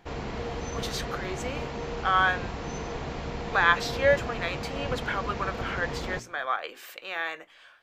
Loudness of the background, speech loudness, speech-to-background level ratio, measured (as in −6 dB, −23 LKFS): −35.0 LKFS, −28.5 LKFS, 6.5 dB